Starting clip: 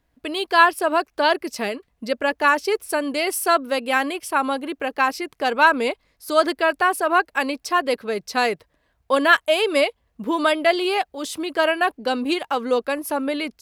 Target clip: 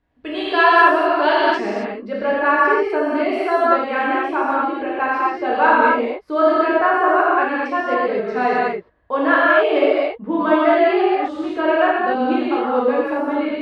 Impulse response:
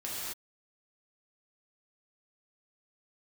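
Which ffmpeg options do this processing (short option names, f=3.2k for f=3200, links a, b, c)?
-filter_complex "[0:a]asetnsamples=n=441:p=0,asendcmd='1.61 lowpass f 1600',lowpass=2.9k[a];[1:a]atrim=start_sample=2205[b];[a][b]afir=irnorm=-1:irlink=0,volume=1.5dB"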